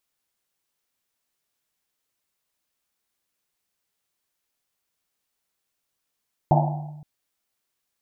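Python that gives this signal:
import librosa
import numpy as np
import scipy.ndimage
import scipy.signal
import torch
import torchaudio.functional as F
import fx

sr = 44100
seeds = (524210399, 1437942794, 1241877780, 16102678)

y = fx.risset_drum(sr, seeds[0], length_s=0.52, hz=150.0, decay_s=1.32, noise_hz=750.0, noise_width_hz=270.0, noise_pct=45)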